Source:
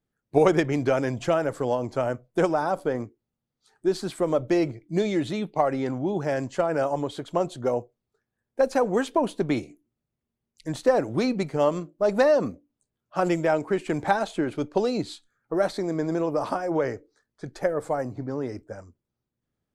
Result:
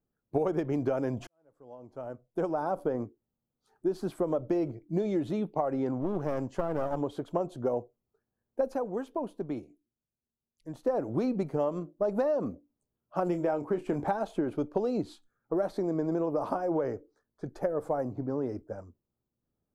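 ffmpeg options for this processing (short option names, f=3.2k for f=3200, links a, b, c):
-filter_complex "[0:a]asettb=1/sr,asplit=3[a][b][c];[a]atrim=end=5.994[d];[b]atrim=start=5.99:end=7.01,asetpts=PTS-STARTPTS,afade=t=in:d=0.004:c=qsin,afade=t=out:st=1.016:d=0.004:c=qsin,aeval=exprs='clip(val(0),-1,0.0224)':c=same[e];[c]atrim=start=7.006[f];[d][e]acrossfade=d=0.004:c1=hsin:c2=qsin[g];[g][f]acrossfade=d=0.004:c1=qsin:c2=hsin,asettb=1/sr,asplit=3[h][i][j];[h]atrim=end=13.264[k];[i]atrim=start=13.26:end=14.08,asetpts=PTS-STARTPTS,afade=t=in:d=0.004:c=qsin,afade=t=out:st=0.816:d=0.004:c=qsin,asplit=2[l][m];[m]adelay=28,volume=-10dB[n];[l][n]amix=inputs=2:normalize=0,atrim=end_sample=36162[o];[j]atrim=start=14.076[p];[k][o]acrossfade=d=0.004:c1=hsin:c2=qsin[q];[q][p]acrossfade=d=0.004:c1=qsin:c2=hsin,asplit=4[r][s][t][u];[r]atrim=end=1.27,asetpts=PTS-STARTPTS,afade=t=out:st=1.266:d=0.004:c=hsin[v];[s]atrim=start=1.27:end=9.15,asetpts=PTS-STARTPTS,afade=t=in:d=1.59:c=qua,afade=t=out:st=7.45:d=0.43:c=exp:silence=0.354813[w];[t]atrim=start=9.15:end=10.47,asetpts=PTS-STARTPTS,volume=-9dB[x];[u]atrim=start=10.47,asetpts=PTS-STARTPTS,afade=t=in:d=0.43:c=exp:silence=0.354813[y];[v][w][x][y]concat=n=4:v=0:a=1,equalizer=f=125:t=o:w=1:g=-3,equalizer=f=2k:t=o:w=1:g=-10,equalizer=f=4k:t=o:w=1:g=-9,equalizer=f=8k:t=o:w=1:g=-12,acompressor=threshold=-25dB:ratio=6"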